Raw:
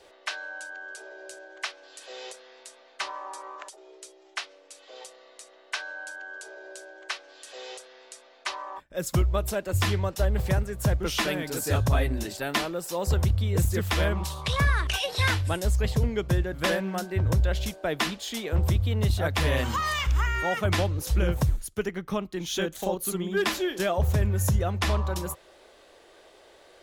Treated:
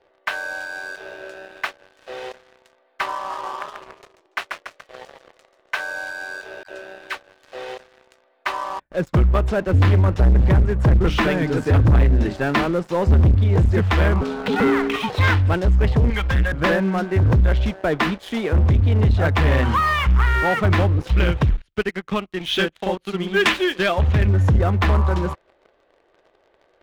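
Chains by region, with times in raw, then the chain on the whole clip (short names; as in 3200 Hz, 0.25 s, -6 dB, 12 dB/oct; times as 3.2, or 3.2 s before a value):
3.15–5.8 low shelf 390 Hz -5.5 dB + warbling echo 0.143 s, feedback 54%, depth 155 cents, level -5 dB
6.63–7.15 hard clip -28 dBFS + dispersion lows, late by 97 ms, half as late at 600 Hz
9.57–13.34 low shelf 210 Hz +7 dB + notches 50/100/150/200/250/300 Hz
14.21–15.1 flutter echo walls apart 11.9 m, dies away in 0.31 s + ring modulator 340 Hz
16.1–16.52 passive tone stack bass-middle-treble 10-0-10 + comb 3.8 ms, depth 68% + sample leveller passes 3
21.07–24.27 bell 3000 Hz +13 dB 1.6 oct + upward expander, over -39 dBFS
whole clip: LPF 2000 Hz 12 dB/oct; dynamic EQ 620 Hz, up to -4 dB, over -41 dBFS, Q 2.1; sample leveller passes 3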